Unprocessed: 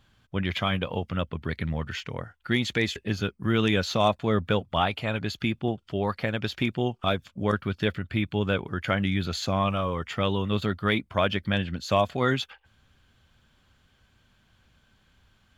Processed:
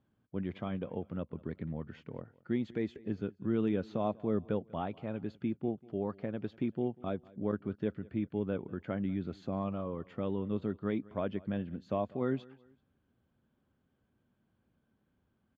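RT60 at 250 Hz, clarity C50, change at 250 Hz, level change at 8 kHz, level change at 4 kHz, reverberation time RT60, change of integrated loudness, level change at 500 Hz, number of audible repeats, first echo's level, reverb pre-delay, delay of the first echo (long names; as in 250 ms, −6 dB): no reverb audible, no reverb audible, −5.5 dB, below −30 dB, −26.0 dB, no reverb audible, −9.0 dB, −8.0 dB, 2, −23.0 dB, no reverb audible, 193 ms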